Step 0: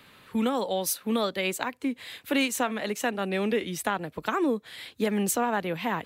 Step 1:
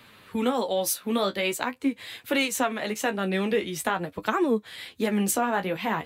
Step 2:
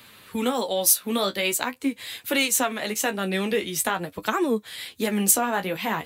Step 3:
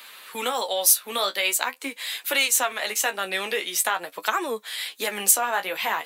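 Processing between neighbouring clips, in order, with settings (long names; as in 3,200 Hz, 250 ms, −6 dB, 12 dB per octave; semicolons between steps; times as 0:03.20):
flanger 0.45 Hz, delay 8.2 ms, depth 8.4 ms, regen +35%; level +5.5 dB
high-shelf EQ 4,300 Hz +11 dB
high-pass filter 670 Hz 12 dB per octave; in parallel at −1 dB: downward compressor, threshold −32 dBFS, peak gain reduction 17 dB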